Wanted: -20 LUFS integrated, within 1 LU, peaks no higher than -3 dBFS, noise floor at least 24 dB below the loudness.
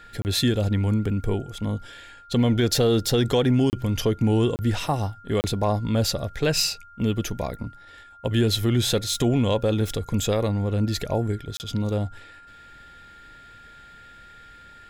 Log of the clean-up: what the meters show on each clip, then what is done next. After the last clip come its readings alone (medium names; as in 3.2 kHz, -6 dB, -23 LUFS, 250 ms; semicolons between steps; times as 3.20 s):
dropouts 5; longest dropout 29 ms; steady tone 1.4 kHz; tone level -46 dBFS; loudness -24.0 LUFS; peak level -10.5 dBFS; loudness target -20.0 LUFS
-> interpolate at 0.22/3.70/4.56/5.41/11.57 s, 29 ms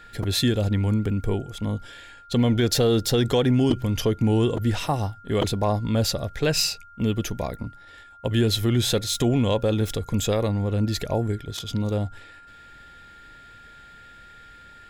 dropouts 0; steady tone 1.4 kHz; tone level -46 dBFS
-> band-stop 1.4 kHz, Q 30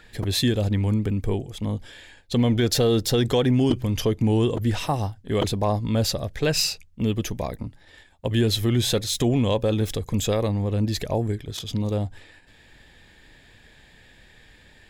steady tone not found; loudness -24.0 LUFS; peak level -7.5 dBFS; loudness target -20.0 LUFS
-> trim +4 dB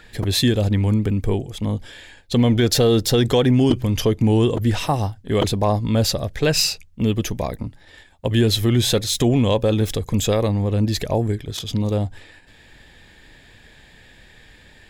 loudness -20.0 LUFS; peak level -3.5 dBFS; noise floor -49 dBFS